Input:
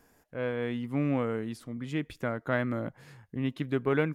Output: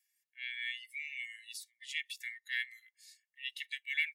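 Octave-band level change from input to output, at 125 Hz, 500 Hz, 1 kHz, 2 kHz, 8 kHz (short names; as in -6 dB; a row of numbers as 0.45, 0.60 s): under -40 dB, under -40 dB, under -40 dB, +1.0 dB, +6.5 dB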